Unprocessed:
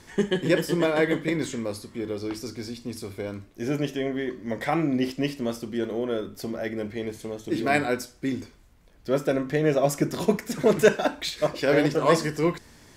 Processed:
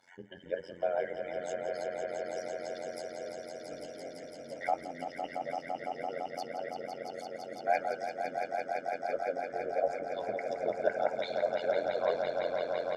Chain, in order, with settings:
expanding power law on the bin magnitudes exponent 1.9
high-pass filter 620 Hz 12 dB per octave
treble cut that deepens with the level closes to 2,200 Hz, closed at −27.5 dBFS
comb filter 1.4 ms, depth 81%
amplitude modulation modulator 89 Hz, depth 85%
on a send: echo that builds up and dies away 169 ms, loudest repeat 5, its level −7 dB
on the sum: level −3.5 dB

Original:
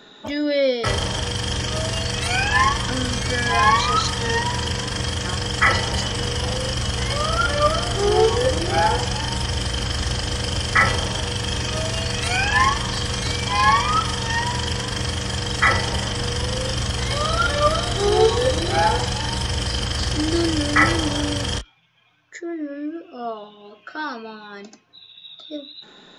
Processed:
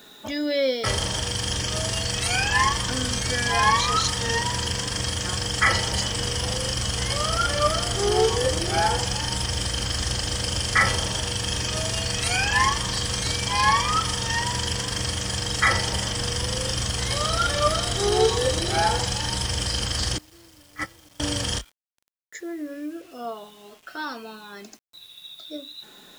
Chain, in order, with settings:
high-shelf EQ 5,400 Hz +10 dB
0:20.18–0:21.20: noise gate −10 dBFS, range −29 dB
bit-depth reduction 8 bits, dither none
level −4 dB

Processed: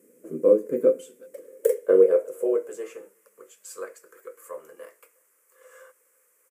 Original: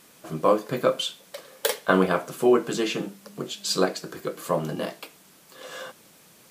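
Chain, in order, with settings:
drawn EQ curve 280 Hz 0 dB, 500 Hz +12 dB, 730 Hz −18 dB, 2,100 Hz −7 dB, 3,900 Hz −27 dB, 7,800 Hz −1 dB
far-end echo of a speakerphone 360 ms, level −27 dB
high-pass filter sweep 250 Hz → 1,100 Hz, 0:01.22–0:03.26
level −7 dB

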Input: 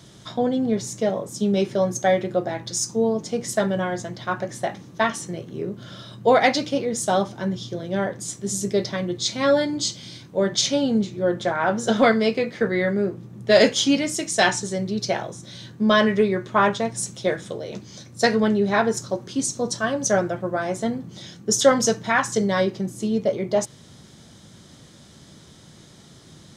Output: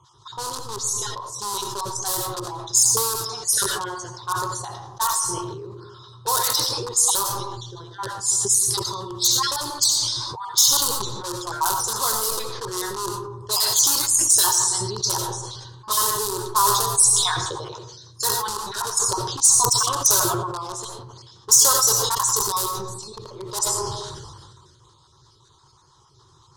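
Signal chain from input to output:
time-frequency cells dropped at random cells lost 31%
in parallel at −5 dB: wrap-around overflow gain 17 dB
on the sum: drawn EQ curve 130 Hz 0 dB, 180 Hz −21 dB, 260 Hz −24 dB, 370 Hz −3 dB, 650 Hz −20 dB, 980 Hz +9 dB, 2,200 Hz −22 dB, 4,000 Hz +5 dB, 10,000 Hz +15 dB
low-pass that shuts in the quiet parts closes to 2,100 Hz, open at −15.5 dBFS
low-shelf EQ 310 Hz −5.5 dB
convolution reverb RT60 1.0 s, pre-delay 45 ms, DRR 7.5 dB
level that may fall only so fast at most 31 dB per second
level −4 dB

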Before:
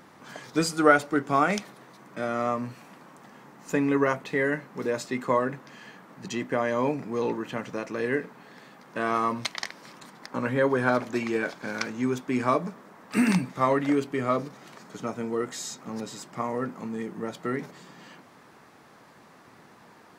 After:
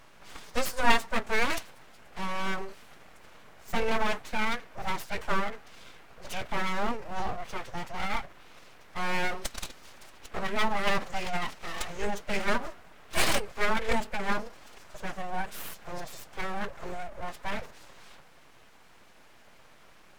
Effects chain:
phase-vocoder pitch shift with formants kept +8 semitones
full-wave rectification

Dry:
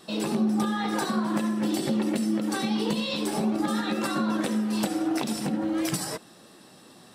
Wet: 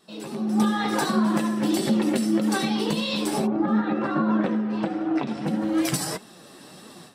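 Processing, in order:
automatic gain control gain up to 16 dB
flanger 1.6 Hz, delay 4.4 ms, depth 3.6 ms, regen +58%
0:03.46–0:05.46: low-pass filter 1,300 Hz → 2,500 Hz 12 dB per octave
level −5 dB

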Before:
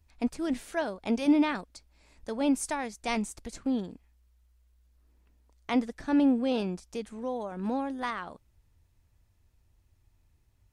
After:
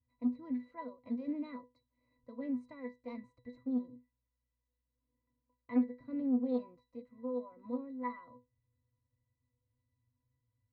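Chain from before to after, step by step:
bass and treble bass −4 dB, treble −10 dB
resonances in every octave B, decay 0.21 s
highs frequency-modulated by the lows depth 0.2 ms
level +3.5 dB

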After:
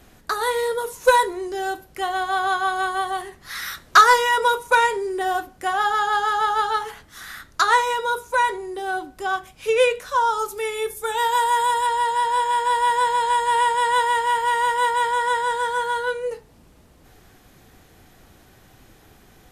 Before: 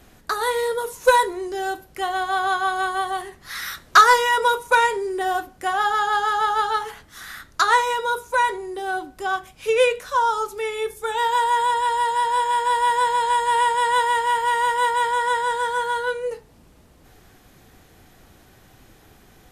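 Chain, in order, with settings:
0:10.39–0:11.87: high-shelf EQ 9,500 Hz +12 dB

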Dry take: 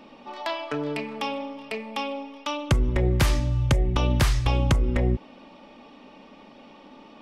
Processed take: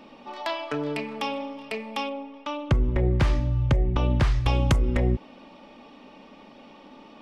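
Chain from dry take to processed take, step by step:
0:02.09–0:04.46: head-to-tape spacing loss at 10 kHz 20 dB

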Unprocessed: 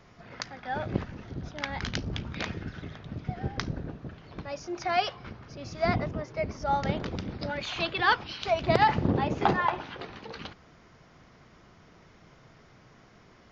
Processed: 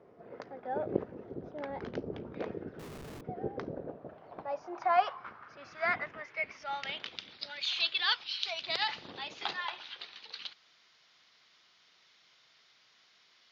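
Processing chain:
band-pass filter sweep 450 Hz → 3,900 Hz, 0:03.50–0:07.43
0:02.79–0:03.21: comparator with hysteresis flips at −58 dBFS
level +6 dB

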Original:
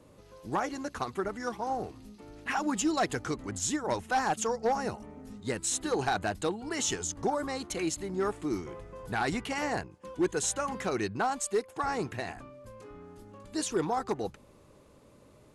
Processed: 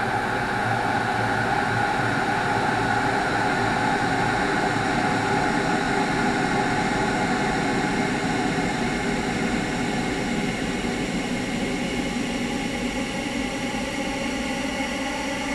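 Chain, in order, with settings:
extreme stretch with random phases 44×, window 0.50 s, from 0:09.14
level +7.5 dB

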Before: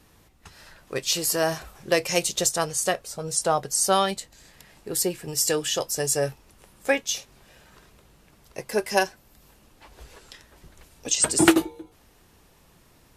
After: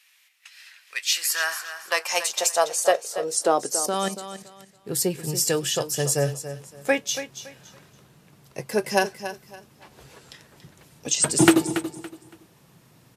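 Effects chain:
0:03.77–0:04.89: output level in coarse steps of 13 dB
high-pass filter sweep 2,300 Hz → 130 Hz, 0:00.86–0:04.72
repeating echo 282 ms, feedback 26%, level −11.5 dB

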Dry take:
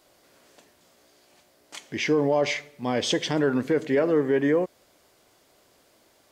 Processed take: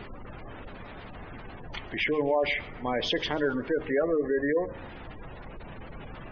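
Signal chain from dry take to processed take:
in parallel at −2.5 dB: downward compressor, threshold −35 dBFS, peak gain reduction 16 dB
on the sum: low-shelf EQ 390 Hz −11 dB
background noise pink −40 dBFS
low-pass filter 3,400 Hz 12 dB per octave
hum removal 77.42 Hz, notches 8
gate on every frequency bin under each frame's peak −20 dB strong
on a send: feedback echo with a high-pass in the loop 137 ms, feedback 39%, level −21 dB

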